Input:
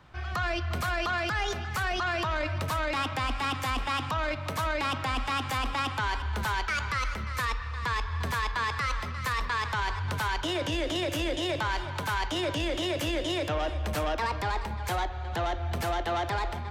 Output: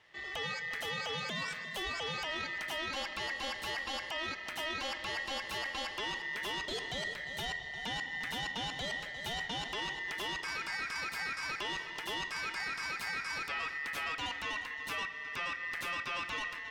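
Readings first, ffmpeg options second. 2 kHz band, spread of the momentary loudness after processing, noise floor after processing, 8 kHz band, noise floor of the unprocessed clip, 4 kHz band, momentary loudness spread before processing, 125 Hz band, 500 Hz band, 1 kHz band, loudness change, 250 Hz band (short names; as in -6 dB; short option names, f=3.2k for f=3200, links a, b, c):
-3.5 dB, 2 LU, -44 dBFS, -5.0 dB, -35 dBFS, -2.5 dB, 3 LU, -19.0 dB, -11.5 dB, -10.5 dB, -6.5 dB, -13.0 dB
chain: -af "aeval=exprs='val(0)*sin(2*PI*1900*n/s)':c=same,volume=-5.5dB"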